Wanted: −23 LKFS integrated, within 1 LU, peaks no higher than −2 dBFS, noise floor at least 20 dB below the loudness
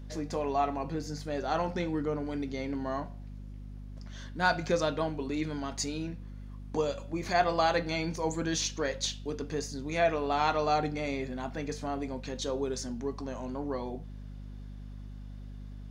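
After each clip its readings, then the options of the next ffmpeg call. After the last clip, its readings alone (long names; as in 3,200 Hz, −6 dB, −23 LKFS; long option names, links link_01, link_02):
mains hum 50 Hz; hum harmonics up to 250 Hz; level of the hum −40 dBFS; integrated loudness −32.0 LKFS; sample peak −12.0 dBFS; target loudness −23.0 LKFS
→ -af "bandreject=frequency=50:width_type=h:width=6,bandreject=frequency=100:width_type=h:width=6,bandreject=frequency=150:width_type=h:width=6,bandreject=frequency=200:width_type=h:width=6,bandreject=frequency=250:width_type=h:width=6"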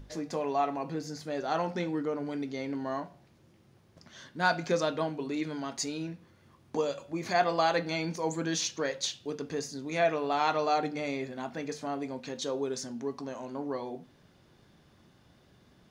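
mains hum none found; integrated loudness −32.5 LKFS; sample peak −12.0 dBFS; target loudness −23.0 LKFS
→ -af "volume=9.5dB"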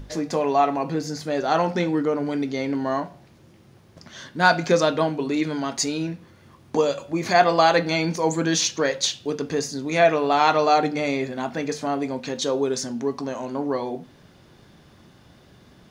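integrated loudness −23.0 LKFS; sample peak −2.5 dBFS; background noise floor −53 dBFS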